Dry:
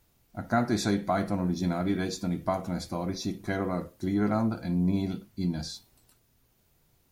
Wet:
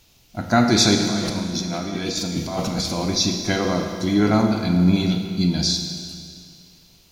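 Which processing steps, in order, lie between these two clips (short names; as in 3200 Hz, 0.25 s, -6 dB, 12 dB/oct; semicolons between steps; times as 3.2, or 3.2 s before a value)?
band shelf 4000 Hz +10 dB; 0.95–3.01 negative-ratio compressor -35 dBFS, ratio -1; Schroeder reverb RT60 2.3 s, combs from 26 ms, DRR 4.5 dB; gain +8 dB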